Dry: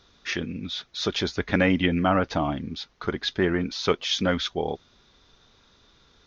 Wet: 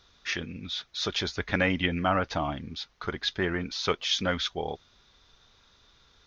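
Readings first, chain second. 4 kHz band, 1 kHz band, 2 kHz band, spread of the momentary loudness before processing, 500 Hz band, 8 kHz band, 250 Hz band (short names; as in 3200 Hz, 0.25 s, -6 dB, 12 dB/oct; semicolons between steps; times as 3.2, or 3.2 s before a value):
-1.0 dB, -2.5 dB, -1.5 dB, 10 LU, -5.0 dB, n/a, -7.0 dB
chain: bell 270 Hz -6.5 dB 2.2 oct; gain -1 dB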